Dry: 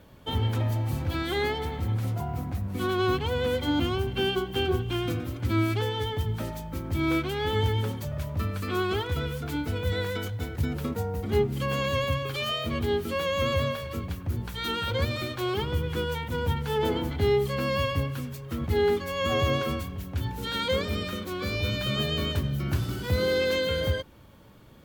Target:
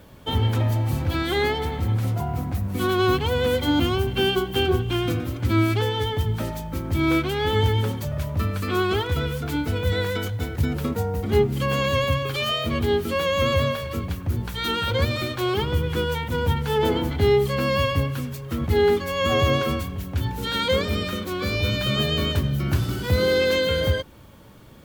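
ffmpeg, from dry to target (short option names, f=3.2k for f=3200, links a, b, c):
-filter_complex "[0:a]asettb=1/sr,asplit=3[a][b][c];[a]atrim=end=2.544[d];[b]atrim=start=2.54:end=4.66,asetpts=PTS-STARTPTS,afade=t=in:d=0.004:c=qsin,afade=t=out:st=2.116:d=0.004:c=qsin,highshelf=f=8.1k:g=5[e];[c]atrim=start=4.656[f];[d][e]acrossfade=d=0.004:c1=hsin:c2=qsin[g];[g][f]acrossfade=d=0.004:c1=qsin:c2=hsin,acrusher=bits=10:mix=0:aa=0.000001,volume=5dB"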